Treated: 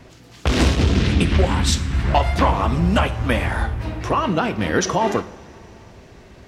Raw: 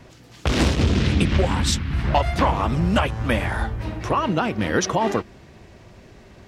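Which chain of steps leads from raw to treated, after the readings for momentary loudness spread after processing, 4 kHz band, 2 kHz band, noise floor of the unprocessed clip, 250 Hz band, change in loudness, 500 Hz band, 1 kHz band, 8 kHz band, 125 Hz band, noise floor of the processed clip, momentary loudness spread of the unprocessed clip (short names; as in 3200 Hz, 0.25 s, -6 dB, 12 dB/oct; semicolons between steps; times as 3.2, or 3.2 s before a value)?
7 LU, +2.0 dB, +2.0 dB, -48 dBFS, +1.5 dB, +2.0 dB, +2.0 dB, +2.0 dB, +2.0 dB, +2.5 dB, -46 dBFS, 6 LU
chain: two-slope reverb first 0.55 s, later 3.8 s, from -18 dB, DRR 10.5 dB; gain +1.5 dB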